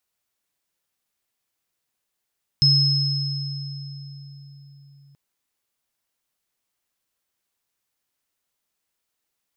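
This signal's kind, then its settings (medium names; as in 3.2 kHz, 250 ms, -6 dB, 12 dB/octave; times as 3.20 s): sine partials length 2.53 s, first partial 140 Hz, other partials 5.17 kHz, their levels 3 dB, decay 4.60 s, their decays 2.72 s, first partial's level -16.5 dB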